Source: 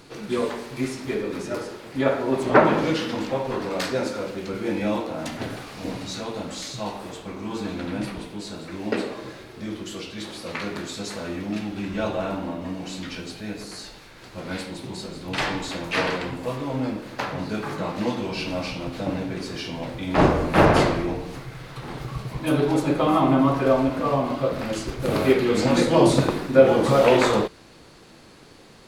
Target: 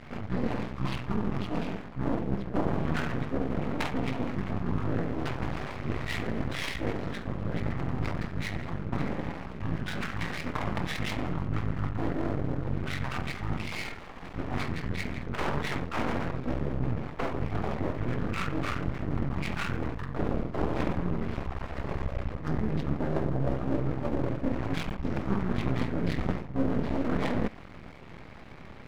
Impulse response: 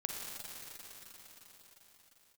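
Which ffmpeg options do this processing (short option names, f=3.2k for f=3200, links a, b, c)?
-af "highshelf=f=3k:g=5,areverse,acompressor=threshold=-30dB:ratio=5,areverse,asetrate=22050,aresample=44100,atempo=2,adynamicsmooth=sensitivity=4:basefreq=2k,aeval=exprs='max(val(0),0)':c=same,volume=7.5dB"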